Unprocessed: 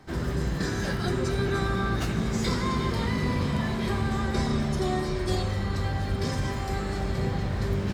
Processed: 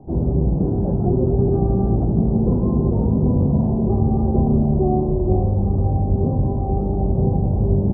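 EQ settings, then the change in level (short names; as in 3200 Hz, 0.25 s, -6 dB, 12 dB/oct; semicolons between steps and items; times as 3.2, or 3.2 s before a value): elliptic low-pass 810 Hz, stop band 70 dB; tilt -2.5 dB/oct; low shelf 89 Hz -7.5 dB; +6.0 dB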